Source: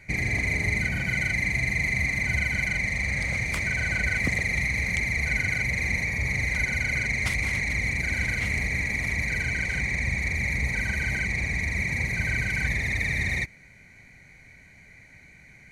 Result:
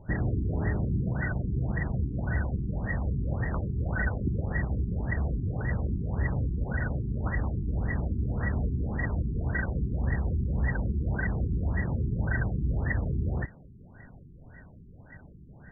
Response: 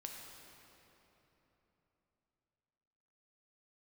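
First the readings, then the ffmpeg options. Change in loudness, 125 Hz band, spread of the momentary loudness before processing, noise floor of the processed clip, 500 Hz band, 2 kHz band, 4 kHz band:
−5.0 dB, +2.5 dB, 2 LU, −51 dBFS, +2.5 dB, −13.5 dB, below −40 dB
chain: -af "asoftclip=type=tanh:threshold=-26.5dB,afftfilt=real='re*lt(b*sr/1024,400*pow(2000/400,0.5+0.5*sin(2*PI*1.8*pts/sr)))':imag='im*lt(b*sr/1024,400*pow(2000/400,0.5+0.5*sin(2*PI*1.8*pts/sr)))':win_size=1024:overlap=0.75,volume=6.5dB"

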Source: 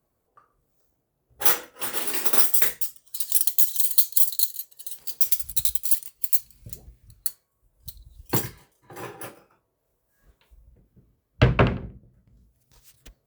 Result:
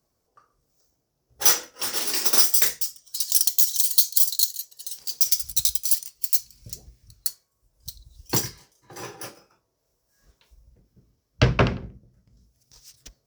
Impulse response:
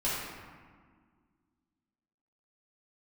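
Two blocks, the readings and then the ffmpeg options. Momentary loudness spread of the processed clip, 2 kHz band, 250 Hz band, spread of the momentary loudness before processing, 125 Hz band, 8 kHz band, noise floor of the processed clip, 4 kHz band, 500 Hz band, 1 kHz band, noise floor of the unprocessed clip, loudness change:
21 LU, 0.0 dB, −1.0 dB, 19 LU, −1.0 dB, +5.0 dB, −75 dBFS, +7.0 dB, −1.0 dB, −0.5 dB, −75 dBFS, +0.5 dB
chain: -af "equalizer=frequency=5500:width=1.8:gain=15,volume=-1dB"

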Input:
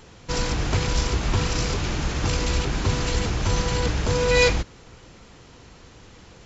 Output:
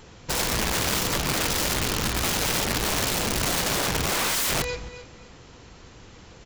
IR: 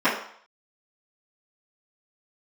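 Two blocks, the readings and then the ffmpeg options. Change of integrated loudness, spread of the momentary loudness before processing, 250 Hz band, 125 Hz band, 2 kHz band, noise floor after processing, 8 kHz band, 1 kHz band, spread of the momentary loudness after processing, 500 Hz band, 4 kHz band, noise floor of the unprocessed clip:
0.0 dB, 7 LU, −1.5 dB, −7.5 dB, +0.5 dB, −48 dBFS, can't be measured, +1.0 dB, 4 LU, −5.0 dB, +3.0 dB, −48 dBFS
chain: -af "aecho=1:1:268|536|804:0.2|0.0499|0.0125,aeval=exprs='(mod(10*val(0)+1,2)-1)/10':channel_layout=same"

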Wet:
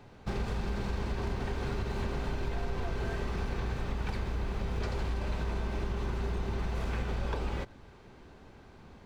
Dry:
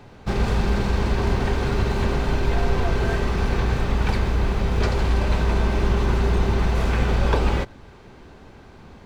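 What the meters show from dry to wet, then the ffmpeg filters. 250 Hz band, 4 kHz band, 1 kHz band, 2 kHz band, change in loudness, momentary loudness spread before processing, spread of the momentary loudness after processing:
−12.5 dB, −12.5 dB, −12.5 dB, −12.5 dB, −12.5 dB, 2 LU, 19 LU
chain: -af "acompressor=threshold=-21dB:ratio=6,volume=-8dB"

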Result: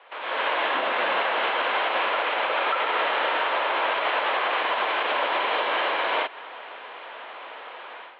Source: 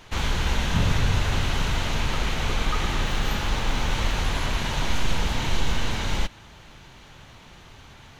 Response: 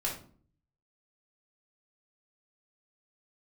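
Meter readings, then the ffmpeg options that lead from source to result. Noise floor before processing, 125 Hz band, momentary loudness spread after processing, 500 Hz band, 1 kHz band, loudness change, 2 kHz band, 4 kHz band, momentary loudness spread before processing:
−48 dBFS, below −35 dB, 16 LU, +7.5 dB, +8.5 dB, +2.5 dB, +6.0 dB, +0.5 dB, 4 LU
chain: -af "aemphasis=mode=reproduction:type=riaa,highpass=frequency=450:width_type=q:width=0.5412,highpass=frequency=450:width_type=q:width=1.307,lowpass=frequency=3300:width_type=q:width=0.5176,lowpass=frequency=3300:width_type=q:width=0.7071,lowpass=frequency=3300:width_type=q:width=1.932,afreqshift=94,alimiter=level_in=4dB:limit=-24dB:level=0:latency=1:release=168,volume=-4dB,dynaudnorm=framelen=200:gausssize=3:maxgain=13dB"

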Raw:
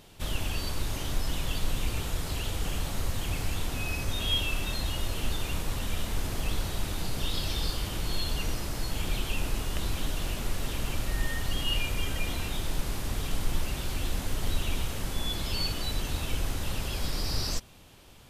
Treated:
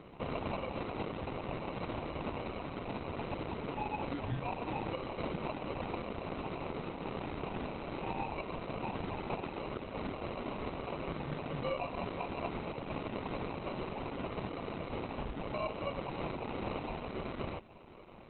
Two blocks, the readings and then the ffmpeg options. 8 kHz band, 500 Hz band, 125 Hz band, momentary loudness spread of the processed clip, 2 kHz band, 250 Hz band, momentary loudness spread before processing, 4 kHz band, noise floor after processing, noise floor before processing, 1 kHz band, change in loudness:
below −40 dB, +2.5 dB, −9.5 dB, 3 LU, −8.0 dB, −1.0 dB, 4 LU, −17.5 dB, −46 dBFS, −36 dBFS, +2.0 dB, −7.0 dB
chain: -af "highpass=190,alimiter=level_in=6.5dB:limit=-24dB:level=0:latency=1:release=491,volume=-6.5dB,areverse,acompressor=mode=upward:threshold=-51dB:ratio=2.5,areverse,acrusher=samples=26:mix=1:aa=0.000001,volume=5.5dB" -ar 48000 -c:a libopus -b:a 8k

